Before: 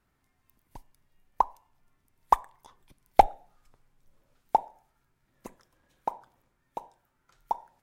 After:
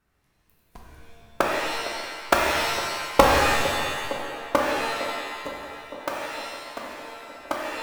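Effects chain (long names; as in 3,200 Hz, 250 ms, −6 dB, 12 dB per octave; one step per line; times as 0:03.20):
sub-harmonics by changed cycles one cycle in 3, inverted
delay with a band-pass on its return 458 ms, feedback 74%, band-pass 420 Hz, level −11.5 dB
reverb with rising layers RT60 1.5 s, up +7 semitones, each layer −2 dB, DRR −1.5 dB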